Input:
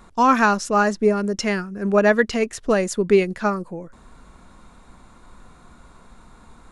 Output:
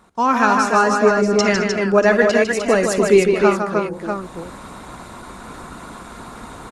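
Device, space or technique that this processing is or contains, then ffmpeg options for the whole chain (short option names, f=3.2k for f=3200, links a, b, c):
video call: -filter_complex "[0:a]asettb=1/sr,asplit=3[a][b][c];[a]atrim=end=0.664[d];[b]atrim=start=0.66:end=1.73,asetpts=PTS-STARTPTS,afade=t=in:d=0.004:c=qsin,afade=t=out:st=1.066:d=0.004:c=qsin,lowpass=f=7.9k:w=0.5412,lowpass=f=7.9k:w=1.3066[e];[c]atrim=start=1.726[f];[d][e]acrossfade=d=0.004:c1=hsin:c2=qsin[g];[g][f]acrossfade=d=0.004:c1=qsin:c2=hsin,highpass=f=160:p=1,aecho=1:1:56|153|214|302|305|639:0.158|0.501|0.119|0.251|0.501|0.224,dynaudnorm=f=160:g=5:m=16.5dB,volume=-1dB" -ar 48000 -c:a libopus -b:a 20k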